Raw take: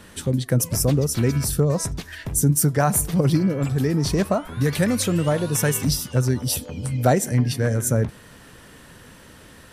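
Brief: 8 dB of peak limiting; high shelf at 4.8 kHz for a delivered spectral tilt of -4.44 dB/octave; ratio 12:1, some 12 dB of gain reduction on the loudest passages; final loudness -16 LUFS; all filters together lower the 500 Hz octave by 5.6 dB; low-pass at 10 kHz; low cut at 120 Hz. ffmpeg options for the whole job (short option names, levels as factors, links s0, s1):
-af "highpass=120,lowpass=10000,equalizer=f=500:t=o:g=-7,highshelf=f=4800:g=4.5,acompressor=threshold=0.0398:ratio=12,volume=7.5,alimiter=limit=0.501:level=0:latency=1"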